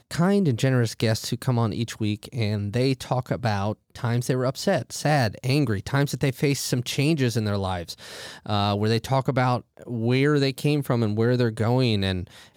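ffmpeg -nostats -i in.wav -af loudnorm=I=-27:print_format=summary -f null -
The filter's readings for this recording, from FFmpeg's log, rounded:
Input Integrated:    -24.0 LUFS
Input True Peak:     -10.0 dBTP
Input LRA:             2.3 LU
Input Threshold:     -34.3 LUFS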